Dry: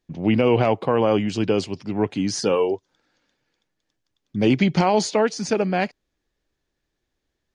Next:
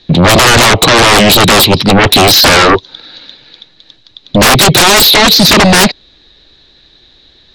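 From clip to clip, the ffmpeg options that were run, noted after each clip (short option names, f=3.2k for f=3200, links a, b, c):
-filter_complex "[0:a]lowpass=f=3.9k:t=q:w=15,acrossover=split=290|1200|3000[a][b][c][d];[a]acompressor=threshold=-24dB:ratio=4[e];[b]acompressor=threshold=-20dB:ratio=4[f];[c]acompressor=threshold=-30dB:ratio=4[g];[d]acompressor=threshold=-29dB:ratio=4[h];[e][f][g][h]amix=inputs=4:normalize=0,aeval=exprs='0.398*sin(PI/2*7.94*val(0)/0.398)':c=same,volume=6dB"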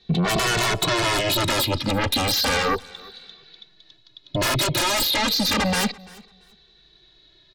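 -filter_complex "[0:a]acompressor=threshold=-8dB:ratio=6,aecho=1:1:339|678:0.0708|0.0135,asplit=2[a][b];[b]adelay=2.2,afreqshift=-0.31[c];[a][c]amix=inputs=2:normalize=1,volume=-9dB"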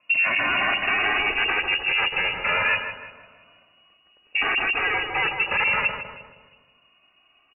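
-filter_complex "[0:a]lowpass=f=2.5k:t=q:w=0.5098,lowpass=f=2.5k:t=q:w=0.6013,lowpass=f=2.5k:t=q:w=0.9,lowpass=f=2.5k:t=q:w=2.563,afreqshift=-2900,asplit=2[a][b];[b]adelay=157,lowpass=f=1.2k:p=1,volume=-4.5dB,asplit=2[c][d];[d]adelay=157,lowpass=f=1.2k:p=1,volume=0.51,asplit=2[e][f];[f]adelay=157,lowpass=f=1.2k:p=1,volume=0.51,asplit=2[g][h];[h]adelay=157,lowpass=f=1.2k:p=1,volume=0.51,asplit=2[i][j];[j]adelay=157,lowpass=f=1.2k:p=1,volume=0.51,asplit=2[k][l];[l]adelay=157,lowpass=f=1.2k:p=1,volume=0.51,asplit=2[m][n];[n]adelay=157,lowpass=f=1.2k:p=1,volume=0.51[o];[c][e][g][i][k][m][o]amix=inputs=7:normalize=0[p];[a][p]amix=inputs=2:normalize=0"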